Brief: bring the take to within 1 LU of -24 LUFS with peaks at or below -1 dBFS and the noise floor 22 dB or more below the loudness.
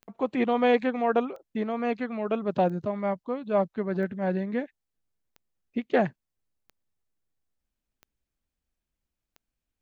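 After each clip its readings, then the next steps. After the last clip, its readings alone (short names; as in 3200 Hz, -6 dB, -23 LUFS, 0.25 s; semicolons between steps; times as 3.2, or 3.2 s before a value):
clicks 8; loudness -28.0 LUFS; peak -9.5 dBFS; loudness target -24.0 LUFS
-> de-click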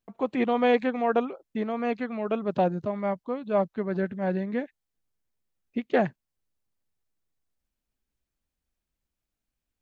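clicks 0; loudness -28.0 LUFS; peak -9.5 dBFS; loudness target -24.0 LUFS
-> gain +4 dB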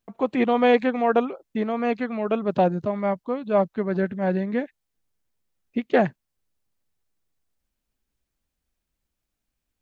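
loudness -24.0 LUFS; peak -5.5 dBFS; noise floor -82 dBFS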